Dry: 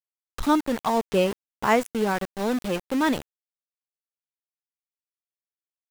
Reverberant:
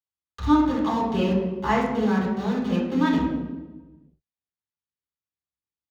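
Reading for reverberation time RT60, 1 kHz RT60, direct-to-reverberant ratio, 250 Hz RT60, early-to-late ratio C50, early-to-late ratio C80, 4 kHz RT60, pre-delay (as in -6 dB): 1.2 s, 1.0 s, -5.5 dB, 1.4 s, 2.5 dB, 5.5 dB, 0.85 s, 3 ms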